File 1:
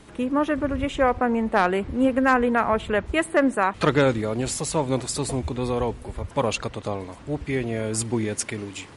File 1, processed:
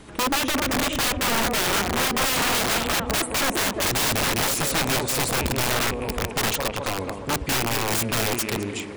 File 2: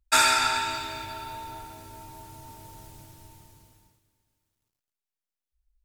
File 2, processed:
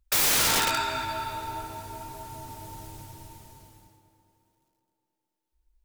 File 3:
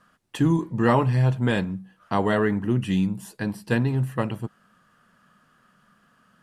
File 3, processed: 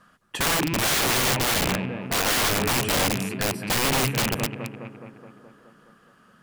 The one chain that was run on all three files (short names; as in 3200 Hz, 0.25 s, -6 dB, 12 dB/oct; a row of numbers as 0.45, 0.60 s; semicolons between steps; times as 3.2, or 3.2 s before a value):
rattling part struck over -25 dBFS, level -12 dBFS; tape echo 0.21 s, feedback 72%, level -9.5 dB, low-pass 1800 Hz; wrapped overs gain 21 dB; gain +3.5 dB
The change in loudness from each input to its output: +1.5, +0.5, +1.5 LU